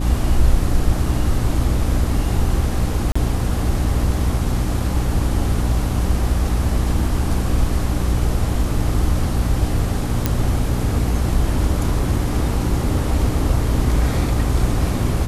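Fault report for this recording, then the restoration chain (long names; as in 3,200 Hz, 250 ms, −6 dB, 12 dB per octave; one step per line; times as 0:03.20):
mains hum 60 Hz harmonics 5 −22 dBFS
0:03.12–0:03.15: drop-out 35 ms
0:10.26: click −3 dBFS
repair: click removal
hum removal 60 Hz, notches 5
repair the gap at 0:03.12, 35 ms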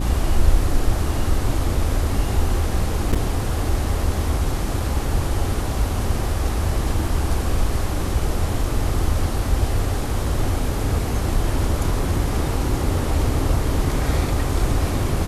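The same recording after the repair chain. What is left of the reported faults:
none of them is left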